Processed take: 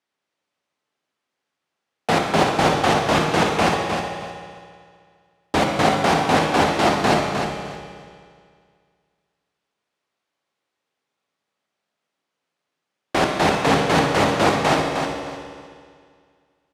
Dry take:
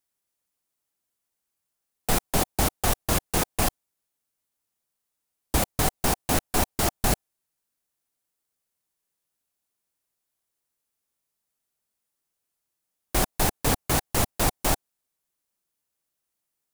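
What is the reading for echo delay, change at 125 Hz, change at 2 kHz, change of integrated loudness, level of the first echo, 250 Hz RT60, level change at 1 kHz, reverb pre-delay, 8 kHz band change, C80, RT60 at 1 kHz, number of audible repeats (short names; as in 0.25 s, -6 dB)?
0.308 s, +4.0 dB, +10.5 dB, +6.0 dB, -6.5 dB, 2.1 s, +11.5 dB, 14 ms, -4.5 dB, 1.5 dB, 2.1 s, 2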